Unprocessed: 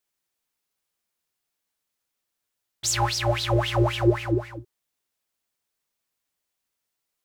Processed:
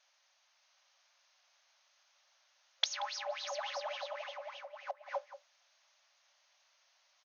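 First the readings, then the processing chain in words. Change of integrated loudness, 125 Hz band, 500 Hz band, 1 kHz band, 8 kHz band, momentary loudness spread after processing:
−15.5 dB, below −40 dB, −15.0 dB, −11.5 dB, −16.0 dB, 12 LU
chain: on a send: single-tap delay 617 ms −5.5 dB
on the sum: gate with flip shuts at −27 dBFS, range −28 dB
far-end echo of a speakerphone 180 ms, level −14 dB
brick-wall band-pass 530–6,700 Hz
level +14 dB

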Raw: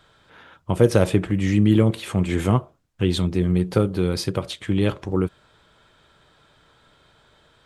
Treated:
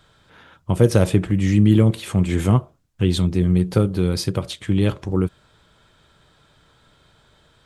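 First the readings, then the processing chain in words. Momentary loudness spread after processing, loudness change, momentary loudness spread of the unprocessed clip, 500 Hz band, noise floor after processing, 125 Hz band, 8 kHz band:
9 LU, +2.0 dB, 9 LU, −0.5 dB, −58 dBFS, +3.5 dB, +2.5 dB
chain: bass and treble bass +5 dB, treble +4 dB
level −1 dB

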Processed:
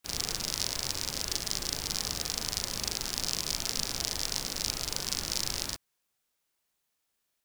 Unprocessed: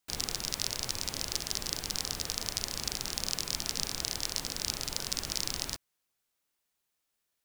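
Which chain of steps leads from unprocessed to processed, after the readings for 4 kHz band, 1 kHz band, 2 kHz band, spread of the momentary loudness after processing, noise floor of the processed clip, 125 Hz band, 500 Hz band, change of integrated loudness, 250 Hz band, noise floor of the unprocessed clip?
+2.0 dB, +1.5 dB, +1.5 dB, 2 LU, −80 dBFS, +2.0 dB, +2.0 dB, +2.0 dB, +1.5 dB, −82 dBFS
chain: backwards echo 39 ms −3 dB

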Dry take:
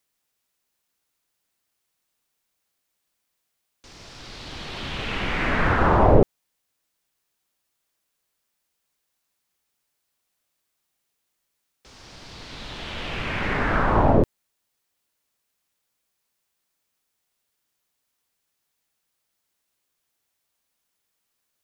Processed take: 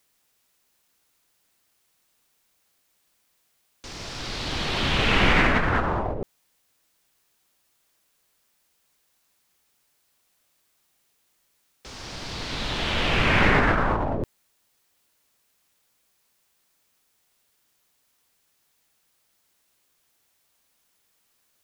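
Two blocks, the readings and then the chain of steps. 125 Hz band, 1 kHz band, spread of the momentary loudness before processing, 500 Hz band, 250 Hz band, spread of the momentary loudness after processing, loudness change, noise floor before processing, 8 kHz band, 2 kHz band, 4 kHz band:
−2.0 dB, −1.5 dB, 21 LU, −4.5 dB, −1.5 dB, 19 LU, −1.5 dB, −78 dBFS, can't be measured, +4.0 dB, +7.5 dB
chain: compressor whose output falls as the input rises −25 dBFS, ratio −1
level +3.5 dB

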